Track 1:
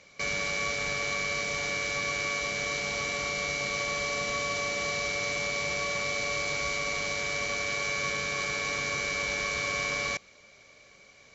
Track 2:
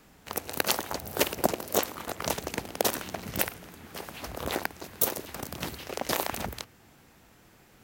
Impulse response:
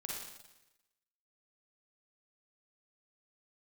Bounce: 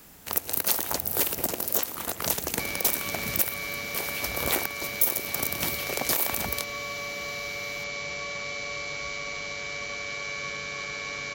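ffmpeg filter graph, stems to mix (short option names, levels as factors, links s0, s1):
-filter_complex "[0:a]acrossover=split=5100[s0][s1];[s1]acompressor=threshold=0.00141:ratio=4:attack=1:release=60[s2];[s0][s2]amix=inputs=2:normalize=0,adelay=2400,volume=0.596[s3];[1:a]asoftclip=type=tanh:threshold=0.106,volume=1.33[s4];[s3][s4]amix=inputs=2:normalize=0,aemphasis=mode=production:type=50kf,alimiter=limit=0.335:level=0:latency=1:release=198"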